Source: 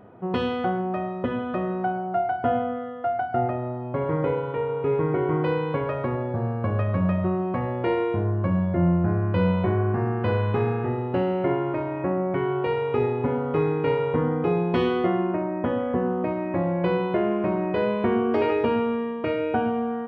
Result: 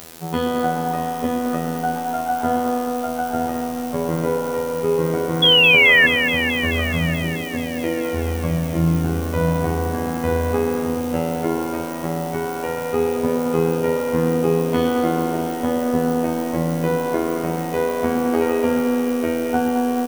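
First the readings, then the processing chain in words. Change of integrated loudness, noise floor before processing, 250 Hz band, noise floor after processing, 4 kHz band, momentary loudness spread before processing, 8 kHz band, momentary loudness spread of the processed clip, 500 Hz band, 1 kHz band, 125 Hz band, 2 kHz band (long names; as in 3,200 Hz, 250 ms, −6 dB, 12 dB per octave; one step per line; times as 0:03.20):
+5.0 dB, −31 dBFS, +4.0 dB, −26 dBFS, +21.0 dB, 5 LU, can't be measured, 7 LU, +3.0 dB, +3.5 dB, +1.0 dB, +15.0 dB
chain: in parallel at −4 dB: bit-depth reduction 6 bits, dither triangular
on the sum: gain on a spectral selection 0:07.06–0:08.04, 730–1,500 Hz −9 dB
reversed playback
upward compression, threshold −28 dBFS
reversed playback
phases set to zero 82.1 Hz
echo with shifted repeats 114 ms, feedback 63%, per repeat +110 Hz, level −17 dB
sound drawn into the spectrogram fall, 0:05.42–0:06.07, 1,700–3,400 Hz −13 dBFS
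feedback echo at a low word length 215 ms, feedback 80%, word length 7 bits, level −9 dB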